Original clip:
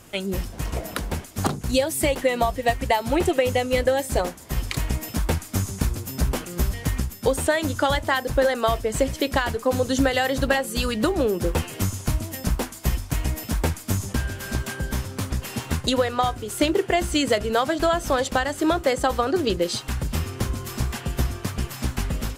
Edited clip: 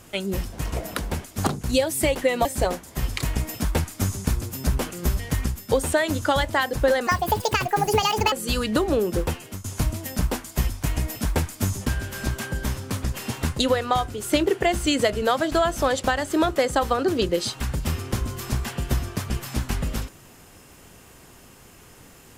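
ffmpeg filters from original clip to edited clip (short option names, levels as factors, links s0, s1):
-filter_complex "[0:a]asplit=5[s0][s1][s2][s3][s4];[s0]atrim=end=2.452[s5];[s1]atrim=start=3.988:end=8.614[s6];[s2]atrim=start=8.61:end=10.6,asetpts=PTS-STARTPTS,asetrate=70119,aresample=44100,atrim=end_sample=55194,asetpts=PTS-STARTPTS[s7];[s3]atrim=start=10.596:end=11.92,asetpts=PTS-STARTPTS,afade=t=out:st=0.834:d=0.49:silence=0.133352[s8];[s4]atrim=start=11.92,asetpts=PTS-STARTPTS,afade=t=in:d=0.004:c=hsin:silence=0.133352[s9];[s5][s6]acrossfade=d=0.004:c1=hsin:c2=hsin[s10];[s10][s7]acrossfade=d=0.004:c1=hsin:c2=hsin[s11];[s8][s9]concat=n=2:v=0:a=1[s12];[s11][s12]acrossfade=d=0.004:c1=hsin:c2=hsin"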